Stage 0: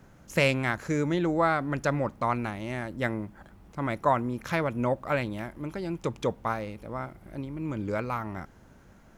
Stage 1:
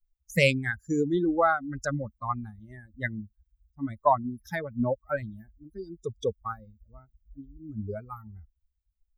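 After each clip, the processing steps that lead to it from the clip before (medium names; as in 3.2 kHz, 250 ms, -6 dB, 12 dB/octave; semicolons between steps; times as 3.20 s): expander on every frequency bin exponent 3; trim +6 dB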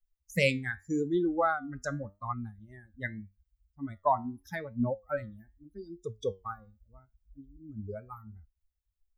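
flange 0.83 Hz, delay 8.3 ms, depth 3.8 ms, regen +74%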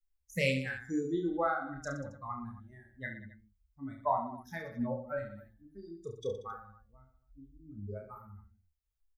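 reverse bouncing-ball echo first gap 30 ms, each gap 1.3×, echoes 5; trim -5.5 dB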